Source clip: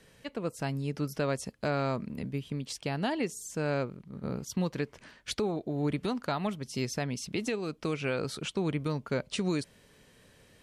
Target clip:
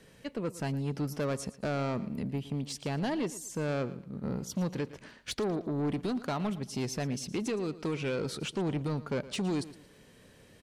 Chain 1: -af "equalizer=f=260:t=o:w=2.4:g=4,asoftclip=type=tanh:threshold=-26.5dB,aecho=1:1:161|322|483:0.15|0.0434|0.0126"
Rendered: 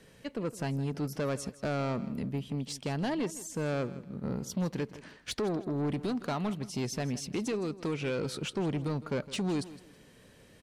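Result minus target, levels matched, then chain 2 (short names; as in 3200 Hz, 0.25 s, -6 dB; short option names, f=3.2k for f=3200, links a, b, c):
echo 47 ms late
-af "equalizer=f=260:t=o:w=2.4:g=4,asoftclip=type=tanh:threshold=-26.5dB,aecho=1:1:114|228|342:0.15|0.0434|0.0126"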